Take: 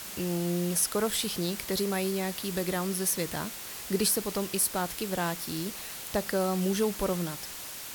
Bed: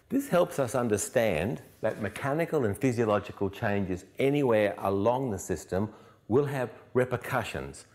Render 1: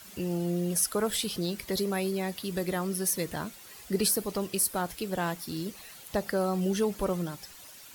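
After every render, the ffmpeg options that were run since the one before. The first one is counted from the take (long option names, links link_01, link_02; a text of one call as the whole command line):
ffmpeg -i in.wav -af "afftdn=noise_reduction=11:noise_floor=-41" out.wav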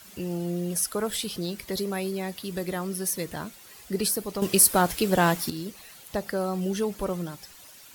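ffmpeg -i in.wav -filter_complex "[0:a]asplit=3[link_01][link_02][link_03];[link_01]atrim=end=4.422[link_04];[link_02]atrim=start=4.418:end=5.502,asetpts=PTS-STARTPTS,volume=9.5dB[link_05];[link_03]atrim=start=5.498[link_06];[link_04][link_05]acrossfade=duration=0.004:curve1=hsin:curve2=hsin[link_07];[link_07][link_06]acrossfade=duration=0.004:curve1=hsin:curve2=hsin" out.wav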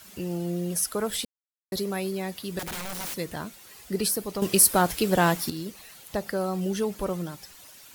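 ffmpeg -i in.wav -filter_complex "[0:a]asettb=1/sr,asplit=3[link_01][link_02][link_03];[link_01]atrim=end=2.594[link_04];[link_02]atrim=start=2.59:end=3.17,asetpts=PTS-STARTPTS,afade=type=in:duration=0.004:curve=qsin,afade=type=out:start_time=0.576:duration=0.004:curve=qsin,aeval=exprs='(mod(28.2*val(0)+1,2)-1)/28.2':channel_layout=same[link_05];[link_03]atrim=start=3.166[link_06];[link_04][link_05]acrossfade=duration=0.004:curve1=hsin:curve2=qsin[link_07];[link_07][link_06]acrossfade=duration=0.004:curve1=qsin:curve2=hsin,asplit=3[link_08][link_09][link_10];[link_08]atrim=end=1.25,asetpts=PTS-STARTPTS,afade=type=out:start_time=1.246:duration=0.004:curve=hsin[link_11];[link_09]atrim=start=1.25:end=1.72,asetpts=PTS-STARTPTS,volume=0[link_12];[link_10]atrim=start=1.72,asetpts=PTS-STARTPTS,afade=type=in:duration=0.004:curve=hsin[link_13];[link_11][link_12][link_13]concat=n=3:v=0:a=1" out.wav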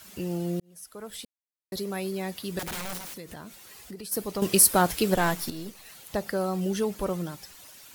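ffmpeg -i in.wav -filter_complex "[0:a]asplit=3[link_01][link_02][link_03];[link_01]afade=type=out:start_time=2.97:duration=0.02[link_04];[link_02]acompressor=threshold=-38dB:ratio=5:attack=3.2:release=140:knee=1:detection=peak,afade=type=in:start_time=2.97:duration=0.02,afade=type=out:start_time=4.11:duration=0.02[link_05];[link_03]afade=type=in:start_time=4.11:duration=0.02[link_06];[link_04][link_05][link_06]amix=inputs=3:normalize=0,asettb=1/sr,asplit=3[link_07][link_08][link_09];[link_07]atrim=end=5.144[link_10];[link_08]atrim=start=5.14:end=5.86,asetpts=PTS-STARTPTS,afade=type=in:duration=0.004:curve=qsin,afade=type=out:start_time=0.716:duration=0.004:curve=qsin,aeval=exprs='if(lt(val(0),0),0.447*val(0),val(0))':channel_layout=same[link_11];[link_09]atrim=start=5.856[link_12];[link_10][link_11]acrossfade=duration=0.004:curve1=hsin:curve2=qsin[link_13];[link_13][link_12]acrossfade=duration=0.004:curve1=qsin:curve2=hsin,asplit=2[link_14][link_15];[link_14]atrim=end=0.6,asetpts=PTS-STARTPTS,afade=type=out:start_time=0.596:duration=0.004:curve=hsin[link_16];[link_15]atrim=start=0.6,asetpts=PTS-STARTPTS,afade=type=in:duration=1.78[link_17];[link_16][link_17]concat=n=2:v=0:a=1" out.wav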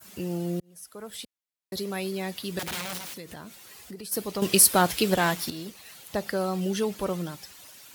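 ffmpeg -i in.wav -af "highpass=61,adynamicequalizer=threshold=0.00708:dfrequency=3300:dqfactor=0.84:tfrequency=3300:tqfactor=0.84:attack=5:release=100:ratio=0.375:range=2.5:mode=boostabove:tftype=bell" out.wav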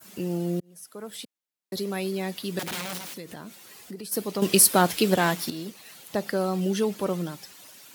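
ffmpeg -i in.wav -af "highpass=190,lowshelf=frequency=270:gain=8" out.wav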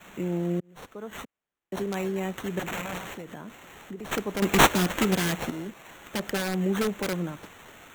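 ffmpeg -i in.wav -filter_complex "[0:a]acrossover=split=410|1800[link_01][link_02][link_03];[link_02]aeval=exprs='(mod(18.8*val(0)+1,2)-1)/18.8':channel_layout=same[link_04];[link_03]acrusher=samples=9:mix=1:aa=0.000001[link_05];[link_01][link_04][link_05]amix=inputs=3:normalize=0" out.wav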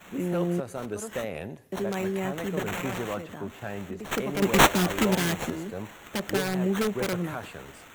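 ffmpeg -i in.wav -i bed.wav -filter_complex "[1:a]volume=-7.5dB[link_01];[0:a][link_01]amix=inputs=2:normalize=0" out.wav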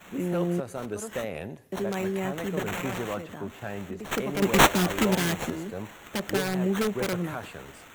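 ffmpeg -i in.wav -af anull out.wav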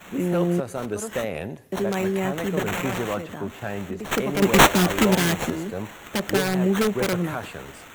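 ffmpeg -i in.wav -af "volume=5dB,alimiter=limit=-2dB:level=0:latency=1" out.wav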